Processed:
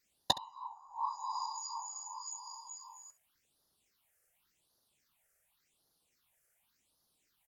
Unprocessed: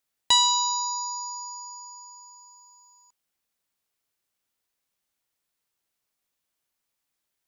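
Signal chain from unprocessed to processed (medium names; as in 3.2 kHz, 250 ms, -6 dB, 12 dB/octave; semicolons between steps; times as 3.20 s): low-pass that closes with the level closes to 300 Hz, closed at -25 dBFS; in parallel at -1 dB: compression, threshold -49 dBFS, peak gain reduction 23.5 dB; on the sum: whisper effect; phase shifter stages 6, 0.89 Hz, lowest notch 250–2400 Hz; on a send: early reflections 14 ms -14 dB, 68 ms -18 dB; on the sum: trim +2.5 dB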